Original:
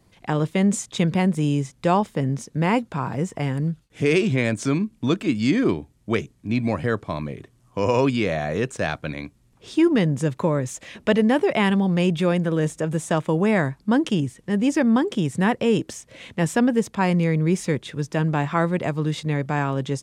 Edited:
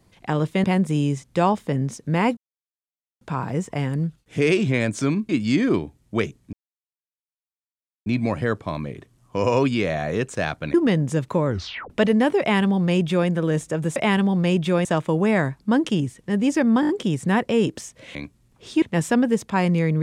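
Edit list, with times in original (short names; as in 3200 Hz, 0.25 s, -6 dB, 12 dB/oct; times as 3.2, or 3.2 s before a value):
0.64–1.12 cut
2.85 insert silence 0.84 s
4.93–5.24 cut
6.48 insert silence 1.53 s
9.16–9.83 move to 16.27
10.55 tape stop 0.44 s
11.49–12.38 copy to 13.05
15.01 stutter 0.02 s, 5 plays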